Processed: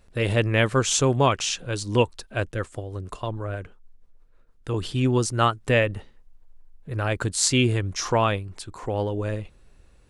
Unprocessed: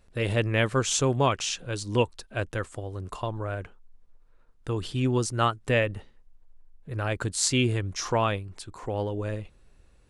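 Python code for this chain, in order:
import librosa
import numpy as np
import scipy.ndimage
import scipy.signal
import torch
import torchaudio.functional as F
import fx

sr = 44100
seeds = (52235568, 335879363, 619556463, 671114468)

y = fx.rotary(x, sr, hz=6.3, at=(2.51, 4.74))
y = y * librosa.db_to_amplitude(3.5)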